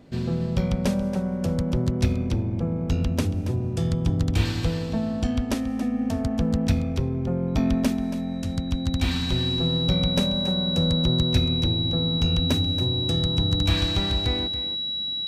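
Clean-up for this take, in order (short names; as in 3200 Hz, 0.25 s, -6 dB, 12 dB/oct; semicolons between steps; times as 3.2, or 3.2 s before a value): notch 3900 Hz, Q 30; inverse comb 0.278 s -12 dB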